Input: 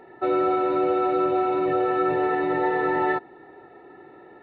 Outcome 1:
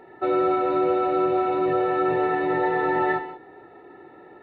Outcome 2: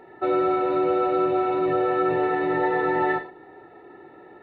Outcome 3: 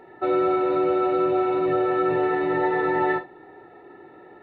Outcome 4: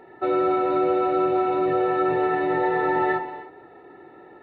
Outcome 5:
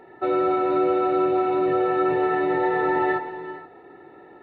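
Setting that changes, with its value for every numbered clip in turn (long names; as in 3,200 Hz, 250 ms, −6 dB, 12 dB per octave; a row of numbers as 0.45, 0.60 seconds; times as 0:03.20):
reverb whose tail is shaped and stops, gate: 210, 140, 90, 330, 500 milliseconds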